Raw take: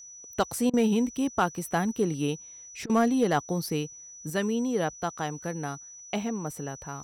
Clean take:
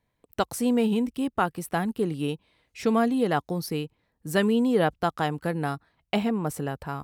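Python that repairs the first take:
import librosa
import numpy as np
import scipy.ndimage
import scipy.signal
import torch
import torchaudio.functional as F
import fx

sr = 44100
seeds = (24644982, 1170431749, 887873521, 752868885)

y = fx.fix_declip(x, sr, threshold_db=-15.0)
y = fx.notch(y, sr, hz=5900.0, q=30.0)
y = fx.fix_interpolate(y, sr, at_s=(0.7, 2.86), length_ms=34.0)
y = fx.gain(y, sr, db=fx.steps((0.0, 0.0), (4.3, 5.5)))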